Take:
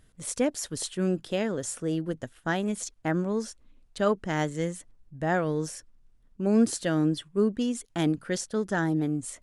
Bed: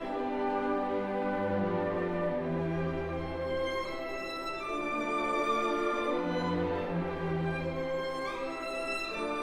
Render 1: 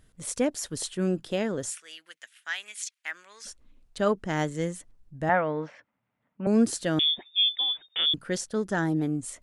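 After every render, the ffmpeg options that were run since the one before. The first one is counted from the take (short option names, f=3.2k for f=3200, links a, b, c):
-filter_complex "[0:a]asplit=3[a][b][c];[a]afade=t=out:st=1.7:d=0.02[d];[b]highpass=f=2.2k:t=q:w=1.8,afade=t=in:st=1.7:d=0.02,afade=t=out:st=3.45:d=0.02[e];[c]afade=t=in:st=3.45:d=0.02[f];[d][e][f]amix=inputs=3:normalize=0,asettb=1/sr,asplit=3[g][h][i];[g]atrim=end=5.294[j];[h]atrim=start=5.29:end=6.47,asetpts=PTS-STARTPTS,afade=t=in:d=0.004:c=qsin,afade=t=out:st=1.176:d=0.004:c=qsin,highpass=f=130:w=0.5412,highpass=f=130:w=1.3066,equalizer=f=160:t=q:w=4:g=-5,equalizer=f=370:t=q:w=4:g=-10,equalizer=f=610:t=q:w=4:g=6,equalizer=f=890:t=q:w=4:g=7,equalizer=f=1.3k:t=q:w=4:g=4,equalizer=f=2.1k:t=q:w=4:g=8,lowpass=f=3.1k:w=0.5412,lowpass=f=3.1k:w=1.3066[k];[i]atrim=start=6.466[l];[j][k]acrossfade=d=0.004:c1=hsin:c2=qsin[m];[m][l]acrossfade=d=0.004:c1=qsin:c2=hsin,asettb=1/sr,asplit=3[n][o][p];[n]atrim=end=6.994[q];[o]atrim=start=6.99:end=8.14,asetpts=PTS-STARTPTS,afade=t=in:d=0.004:c=qsin,afade=t=out:st=1.146:d=0.004:c=qsin,lowpass=f=3.1k:t=q:w=0.5098,lowpass=f=3.1k:t=q:w=0.6013,lowpass=f=3.1k:t=q:w=0.9,lowpass=f=3.1k:t=q:w=2.563,afreqshift=-3700[r];[p]atrim=start=8.136[s];[q][r]acrossfade=d=0.004:c1=hsin:c2=qsin[t];[t][s]acrossfade=d=0.004:c1=qsin:c2=hsin"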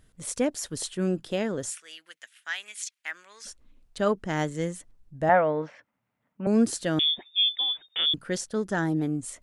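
-filter_complex "[0:a]asettb=1/sr,asplit=3[a][b][c];[a]atrim=end=5.204[d];[b]atrim=start=5.2:end=5.62,asetpts=PTS-STARTPTS,afade=t=in:d=0.004:c=qsin,afade=t=out:st=0.416:d=0.004:c=qsin,equalizer=f=620:w=1.7:g=6[e];[c]atrim=start=5.616[f];[d][e]acrossfade=d=0.004:c1=hsin:c2=qsin[g];[g][f]acrossfade=d=0.004:c1=qsin:c2=hsin"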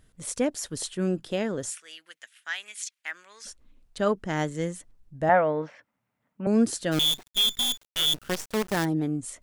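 -filter_complex "[0:a]asplit=3[a][b][c];[a]afade=t=out:st=6.91:d=0.02[d];[b]acrusher=bits=5:dc=4:mix=0:aa=0.000001,afade=t=in:st=6.91:d=0.02,afade=t=out:st=8.84:d=0.02[e];[c]afade=t=in:st=8.84:d=0.02[f];[d][e][f]amix=inputs=3:normalize=0"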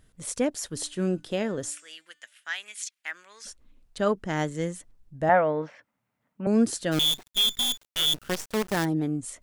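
-filter_complex "[0:a]asettb=1/sr,asplit=3[a][b][c];[a]atrim=end=0.704[d];[b]atrim=start=0.7:end=2.5,asetpts=PTS-STARTPTS,afade=t=in:d=0.004:c=qsin,afade=t=out:st=1.796:d=0.004:c=qsin,bandreject=f=296.7:t=h:w=4,bandreject=f=593.4:t=h:w=4,bandreject=f=890.1:t=h:w=4,bandreject=f=1.1868k:t=h:w=4,bandreject=f=1.4835k:t=h:w=4,bandreject=f=1.7802k:t=h:w=4,bandreject=f=2.0769k:t=h:w=4,bandreject=f=2.3736k:t=h:w=4,bandreject=f=2.6703k:t=h:w=4,bandreject=f=2.967k:t=h:w=4,bandreject=f=3.2637k:t=h:w=4,bandreject=f=3.5604k:t=h:w=4,bandreject=f=3.8571k:t=h:w=4,bandreject=f=4.1538k:t=h:w=4,bandreject=f=4.4505k:t=h:w=4,bandreject=f=4.7472k:t=h:w=4,bandreject=f=5.0439k:t=h:w=4,bandreject=f=5.3406k:t=h:w=4,bandreject=f=5.6373k:t=h:w=4,bandreject=f=5.934k:t=h:w=4,bandreject=f=6.2307k:t=h:w=4,bandreject=f=6.5274k:t=h:w=4,bandreject=f=6.8241k:t=h:w=4,bandreject=f=7.1208k:t=h:w=4,bandreject=f=7.4175k:t=h:w=4,bandreject=f=7.7142k:t=h:w=4,bandreject=f=8.0109k:t=h:w=4,bandreject=f=8.3076k:t=h:w=4,bandreject=f=8.6043k:t=h:w=4,bandreject=f=8.901k:t=h:w=4,bandreject=f=9.1977k:t=h:w=4[e];[c]atrim=start=2.496[f];[d][e]acrossfade=d=0.004:c1=hsin:c2=qsin[g];[g][f]acrossfade=d=0.004:c1=qsin:c2=hsin"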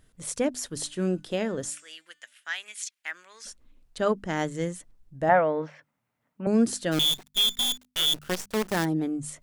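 -af "bandreject=f=50:t=h:w=6,bandreject=f=100:t=h:w=6,bandreject=f=150:t=h:w=6,bandreject=f=200:t=h:w=6,bandreject=f=250:t=h:w=6"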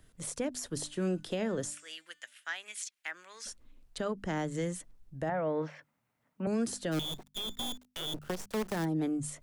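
-filter_complex "[0:a]acrossover=split=180|440|1100[a][b][c][d];[a]acompressor=threshold=-34dB:ratio=4[e];[b]acompressor=threshold=-34dB:ratio=4[f];[c]acompressor=threshold=-34dB:ratio=4[g];[d]acompressor=threshold=-38dB:ratio=4[h];[e][f][g][h]amix=inputs=4:normalize=0,alimiter=limit=-24dB:level=0:latency=1:release=126"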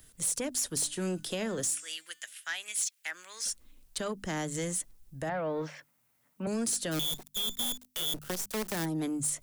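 -filter_complex "[0:a]acrossover=split=560[a][b];[b]crystalizer=i=3.5:c=0[c];[a][c]amix=inputs=2:normalize=0,asoftclip=type=tanh:threshold=-24.5dB"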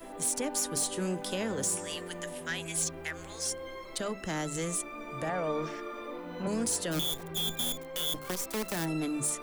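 -filter_complex "[1:a]volume=-9.5dB[a];[0:a][a]amix=inputs=2:normalize=0"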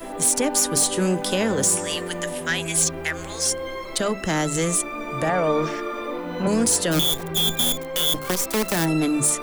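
-af "volume=11dB"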